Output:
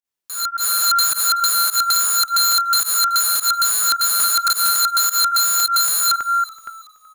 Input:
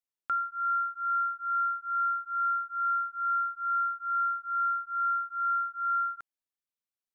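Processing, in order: reverse delay 0.28 s, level -9 dB; wrapped overs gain 31.5 dB; pump 106 bpm, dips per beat 1, -22 dB, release 91 ms; on a send: frequency-shifting echo 0.377 s, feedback 35%, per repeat -57 Hz, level -20.5 dB; on the sum: AGC gain up to 13 dB; gain +6.5 dB

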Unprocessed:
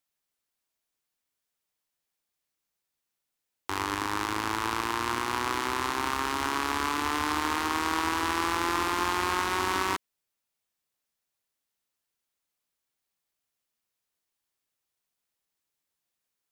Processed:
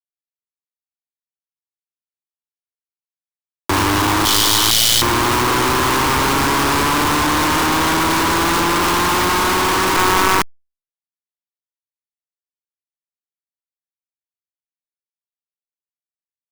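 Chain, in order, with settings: sample leveller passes 2; 4.25–5.02 brick-wall FIR high-pass 2900 Hz; echo 0.454 s -20 dB; fuzz box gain 43 dB, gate -44 dBFS; negative-ratio compressor -23 dBFS, ratio -0.5; power-law curve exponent 0.35; gain -3.5 dB

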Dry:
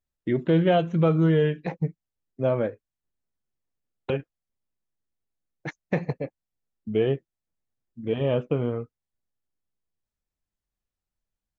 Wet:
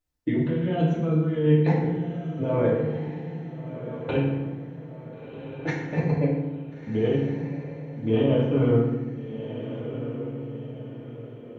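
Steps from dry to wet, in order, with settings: negative-ratio compressor -26 dBFS, ratio -1; diffused feedback echo 1.408 s, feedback 44%, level -10 dB; FDN reverb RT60 1.1 s, low-frequency decay 1.55×, high-frequency decay 0.7×, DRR -5.5 dB; gain -4 dB

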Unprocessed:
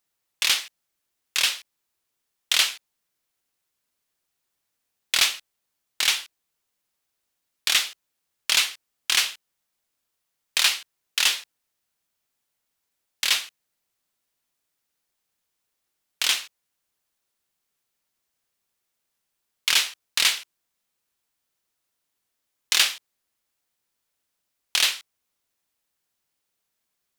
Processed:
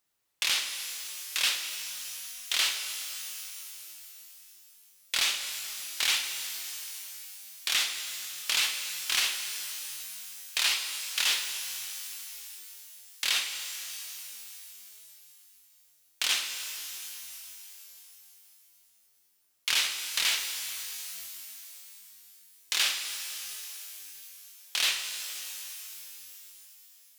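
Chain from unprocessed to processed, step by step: limiter -15 dBFS, peak gain reduction 9.5 dB; shimmer reverb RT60 3.4 s, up +12 st, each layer -2 dB, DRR 6 dB

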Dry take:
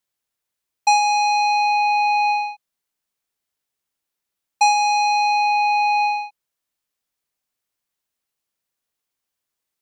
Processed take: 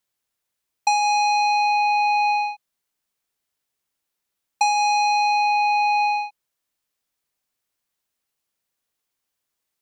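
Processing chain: compressor, threshold -19 dBFS, peak gain reduction 6.5 dB; gain +1.5 dB

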